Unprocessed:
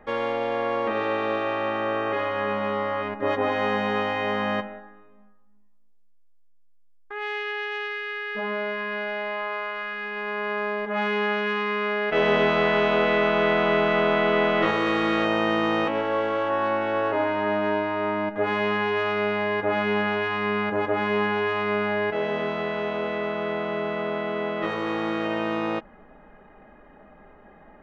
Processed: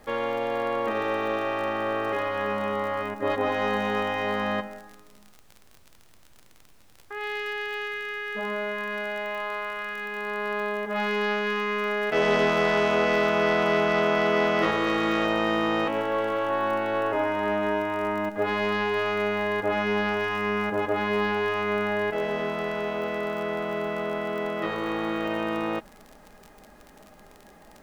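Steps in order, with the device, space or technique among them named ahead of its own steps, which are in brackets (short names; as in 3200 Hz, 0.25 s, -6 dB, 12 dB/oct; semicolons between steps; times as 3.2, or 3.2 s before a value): record under a worn stylus (tracing distortion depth 0.047 ms; crackle 41/s -33 dBFS; pink noise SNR 34 dB); gain -1.5 dB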